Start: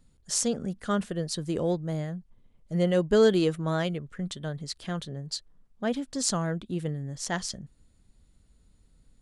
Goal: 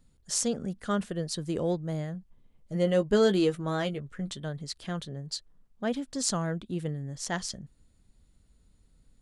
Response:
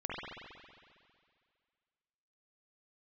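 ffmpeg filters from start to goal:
-filter_complex "[0:a]asettb=1/sr,asplit=3[a][b][c];[a]atrim=end=2.134[d];[b]atrim=start=2.13:end=4.4,asetpts=PTS-STARTPTS,afade=t=in:d=0.004:c=qsin,afade=t=out:st=2.266:d=0.004:c=qsin,asplit=2[e][f];[f]adelay=15,volume=-8.5dB[g];[e][g]amix=inputs=2:normalize=0,atrim=end_sample=100107[h];[c]atrim=start=4.396[i];[d][h]acrossfade=d=0.004:c1=hsin:c2=qsin[j];[j][i]acrossfade=d=0.004:c1=qsin:c2=hsin,volume=-1.5dB"

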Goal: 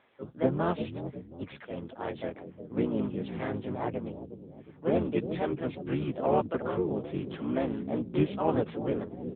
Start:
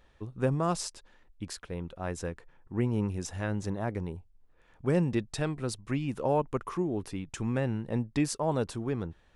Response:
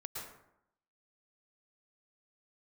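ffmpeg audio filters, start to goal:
-filter_complex "[0:a]highpass=240,asplit=4[a][b][c][d];[b]asetrate=22050,aresample=44100,atempo=2,volume=-4dB[e];[c]asetrate=35002,aresample=44100,atempo=1.25992,volume=-16dB[f];[d]asetrate=55563,aresample=44100,atempo=0.793701,volume=-1dB[g];[a][e][f][g]amix=inputs=4:normalize=0,acrossover=split=720[h][i];[h]asplit=6[j][k][l][m][n][o];[k]adelay=360,afreqshift=-39,volume=-7.5dB[p];[l]adelay=720,afreqshift=-78,volume=-15dB[q];[m]adelay=1080,afreqshift=-117,volume=-22.6dB[r];[n]adelay=1440,afreqshift=-156,volume=-30.1dB[s];[o]adelay=1800,afreqshift=-195,volume=-37.6dB[t];[j][p][q][r][s][t]amix=inputs=6:normalize=0[u];[i]asoftclip=type=tanh:threshold=-30dB[v];[u][v]amix=inputs=2:normalize=0" -ar 8000 -c:a libopencore_amrnb -b:a 7950

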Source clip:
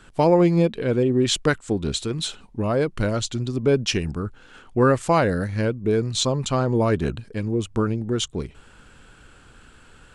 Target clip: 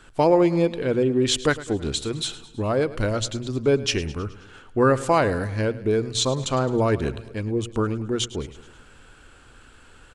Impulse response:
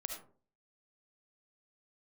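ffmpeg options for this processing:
-af "equalizer=f=180:t=o:w=0.53:g=-7,bandreject=f=60:t=h:w=6,bandreject=f=120:t=h:w=6,aecho=1:1:106|212|318|424|530:0.141|0.0805|0.0459|0.0262|0.0149"

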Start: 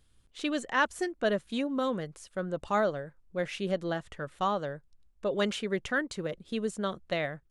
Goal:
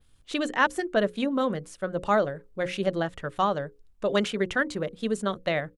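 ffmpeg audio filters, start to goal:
-af "bandreject=f=60:t=h:w=6,bandreject=f=120:t=h:w=6,bandreject=f=180:t=h:w=6,bandreject=f=240:t=h:w=6,bandreject=f=300:t=h:w=6,bandreject=f=360:t=h:w=6,bandreject=f=420:t=h:w=6,bandreject=f=480:t=h:w=6,bandreject=f=540:t=h:w=6,atempo=1.3,adynamicequalizer=threshold=0.00178:dfrequency=6700:dqfactor=0.74:tfrequency=6700:tqfactor=0.74:attack=5:release=100:ratio=0.375:range=2.5:mode=cutabove:tftype=bell,volume=5dB"

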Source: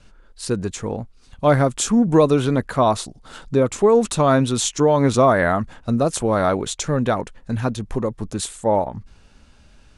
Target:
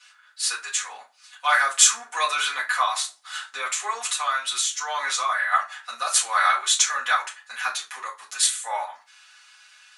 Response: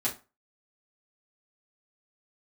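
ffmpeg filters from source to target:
-filter_complex "[0:a]highpass=f=1.3k:w=0.5412,highpass=f=1.3k:w=1.3066,asplit=3[a][b][c];[a]afade=t=out:st=2.82:d=0.02[d];[b]acompressor=threshold=-31dB:ratio=6,afade=t=in:st=2.82:d=0.02,afade=t=out:st=5.51:d=0.02[e];[c]afade=t=in:st=5.51:d=0.02[f];[d][e][f]amix=inputs=3:normalize=0[g];[1:a]atrim=start_sample=2205[h];[g][h]afir=irnorm=-1:irlink=0,volume=3.5dB"

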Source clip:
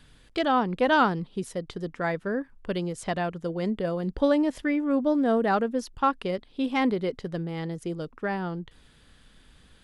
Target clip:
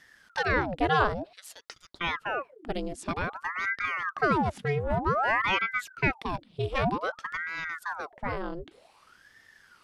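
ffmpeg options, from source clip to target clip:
-filter_complex "[0:a]asettb=1/sr,asplit=3[a][b][c];[a]atrim=end=1.334[d];[b]atrim=start=1.33:end=2.01,asetpts=PTS-STARTPTS,afade=t=in:d=0.004:c=qsin,afade=t=out:st=0.676:d=0.004:c=qsin,highpass=f=2.4k:t=q:w=1.7[e];[c]atrim=start=2.006[f];[d][e]acrossfade=d=0.004:c1=hsin:c2=qsin[g];[g][f]acrossfade=d=0.004:c1=qsin:c2=hsin,asettb=1/sr,asplit=3[h][i][j];[h]atrim=end=4.364[k];[i]atrim=start=4.36:end=5.06,asetpts=PTS-STARTPTS,afade=t=in:d=0.004:c=qsin,afade=t=out:st=0.696:d=0.004:c=qsin,aeval=exprs='0.168*(cos(1*acos(clip(val(0)/0.168,-1,1)))-cos(1*PI/2))+0.00944*(cos(6*acos(clip(val(0)/0.168,-1,1)))-cos(6*PI/2))':c=same[l];[j]atrim=start=5.056[m];[k][l]acrossfade=d=0.004:c1=hsin:c2=qsin[n];[n][m]acrossfade=d=0.004:c1=qsin:c2=hsin,aeval=exprs='val(0)*sin(2*PI*980*n/s+980*0.85/0.53*sin(2*PI*0.53*n/s))':c=same"

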